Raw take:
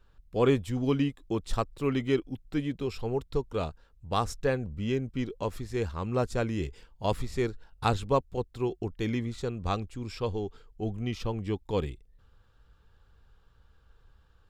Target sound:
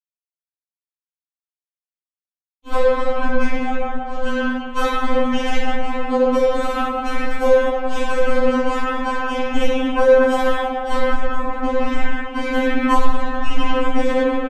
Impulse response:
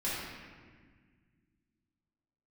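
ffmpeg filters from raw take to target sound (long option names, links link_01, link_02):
-filter_complex "[0:a]areverse,equalizer=frequency=260:width=2.5:gain=-6.5,bandreject=frequency=810:width=15,asplit=2[link_01][link_02];[link_02]adelay=34,volume=-8.5dB[link_03];[link_01][link_03]amix=inputs=2:normalize=0,acrusher=bits=3:mix=0:aa=0.5,acompressor=threshold=-29dB:ratio=6,tiltshelf=frequency=1200:gain=4,asplit=2[link_04][link_05];[link_05]adelay=190,highpass=300,lowpass=3400,asoftclip=type=hard:threshold=-26dB,volume=-12dB[link_06];[link_04][link_06]amix=inputs=2:normalize=0[link_07];[1:a]atrim=start_sample=2205,asetrate=28224,aresample=44100[link_08];[link_07][link_08]afir=irnorm=-1:irlink=0,alimiter=level_in=17dB:limit=-1dB:release=50:level=0:latency=1,afftfilt=real='re*3.46*eq(mod(b,12),0)':imag='im*3.46*eq(mod(b,12),0)':win_size=2048:overlap=0.75,volume=-4.5dB"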